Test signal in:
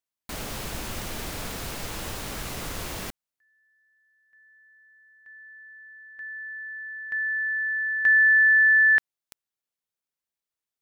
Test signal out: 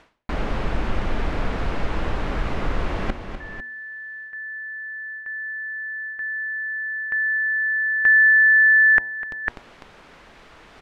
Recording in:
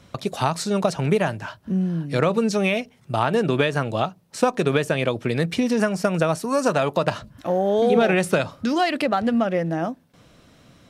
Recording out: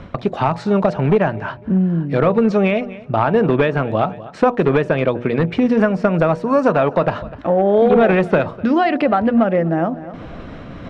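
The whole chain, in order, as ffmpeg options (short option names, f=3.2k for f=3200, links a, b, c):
-filter_complex "[0:a]asplit=2[a][b];[b]acompressor=threshold=-33dB:ratio=6:attack=6.7:release=610:detection=peak,volume=-1dB[c];[a][c]amix=inputs=2:normalize=0,lowshelf=f=250:g=9.5,aecho=1:1:250|500:0.075|0.024,areverse,acompressor=mode=upward:threshold=-30dB:ratio=4:attack=93:release=175:knee=2.83:detection=peak,areverse,bandreject=f=120.5:t=h:w=4,bandreject=f=241:t=h:w=4,bandreject=f=361.5:t=h:w=4,bandreject=f=482:t=h:w=4,bandreject=f=602.5:t=h:w=4,bandreject=f=723:t=h:w=4,bandreject=f=843.5:t=h:w=4,bandreject=f=964:t=h:w=4,asoftclip=type=hard:threshold=-9dB,lowpass=2k,equalizer=f=110:w=0.64:g=-8.5,volume=4.5dB"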